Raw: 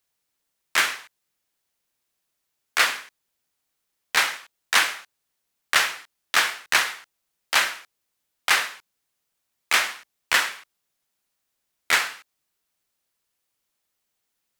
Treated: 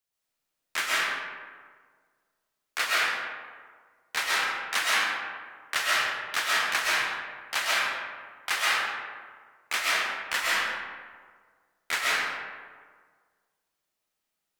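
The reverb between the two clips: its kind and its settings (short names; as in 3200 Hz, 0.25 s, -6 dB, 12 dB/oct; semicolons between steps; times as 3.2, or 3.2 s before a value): digital reverb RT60 1.7 s, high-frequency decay 0.5×, pre-delay 90 ms, DRR -6.5 dB; gain -9.5 dB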